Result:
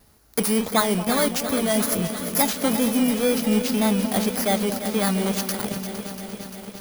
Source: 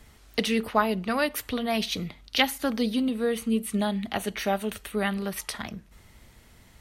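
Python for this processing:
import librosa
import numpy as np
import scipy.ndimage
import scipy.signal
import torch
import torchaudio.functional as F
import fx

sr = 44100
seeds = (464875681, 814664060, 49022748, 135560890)

p1 = fx.bit_reversed(x, sr, seeds[0], block=16)
p2 = fx.low_shelf(p1, sr, hz=73.0, db=-11.5)
p3 = fx.fuzz(p2, sr, gain_db=38.0, gate_db=-37.0)
p4 = p2 + (p3 * librosa.db_to_amplitude(-12.0))
p5 = fx.wow_flutter(p4, sr, seeds[1], rate_hz=2.1, depth_cents=84.0)
p6 = p5 + fx.echo_alternate(p5, sr, ms=230, hz=990.0, feedback_pct=64, wet_db=-10.5, dry=0)
y = fx.echo_crushed(p6, sr, ms=345, feedback_pct=80, bits=7, wet_db=-10.5)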